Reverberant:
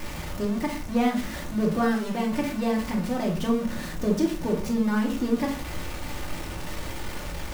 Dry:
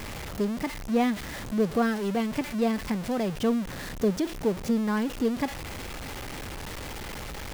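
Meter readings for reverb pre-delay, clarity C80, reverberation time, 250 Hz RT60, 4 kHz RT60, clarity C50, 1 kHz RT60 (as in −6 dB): 3 ms, 14.0 dB, 0.40 s, 0.60 s, 0.30 s, 8.5 dB, 0.40 s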